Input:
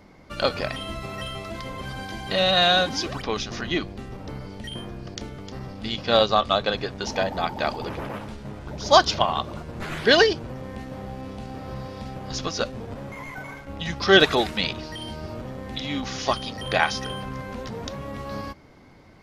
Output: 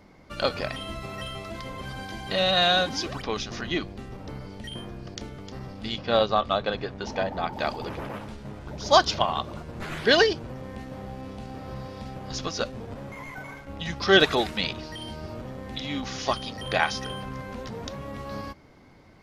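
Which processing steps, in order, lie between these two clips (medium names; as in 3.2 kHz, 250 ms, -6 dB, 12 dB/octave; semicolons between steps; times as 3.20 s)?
5.98–7.53 s: treble shelf 4.6 kHz -11.5 dB; trim -2.5 dB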